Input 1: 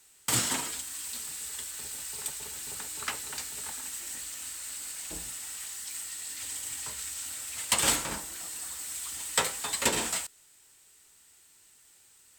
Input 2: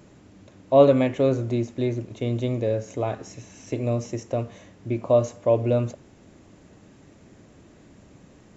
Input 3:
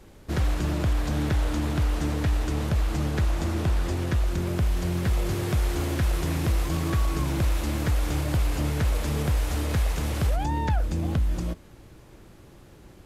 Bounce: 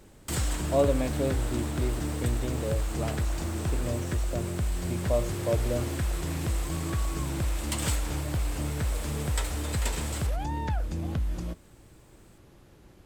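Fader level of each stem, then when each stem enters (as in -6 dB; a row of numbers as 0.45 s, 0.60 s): -8.5 dB, -9.0 dB, -5.0 dB; 0.00 s, 0.00 s, 0.00 s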